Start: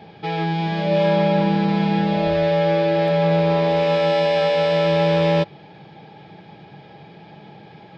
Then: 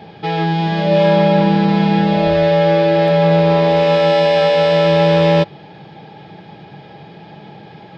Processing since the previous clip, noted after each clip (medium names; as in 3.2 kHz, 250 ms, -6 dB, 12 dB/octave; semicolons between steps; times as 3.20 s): band-stop 2.3 kHz, Q 30; trim +5.5 dB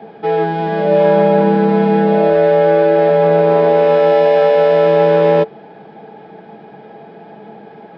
three-band isolator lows -18 dB, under 210 Hz, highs -14 dB, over 2 kHz; small resonant body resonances 220/440/680/1500 Hz, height 10 dB, ringing for 100 ms; trim +1 dB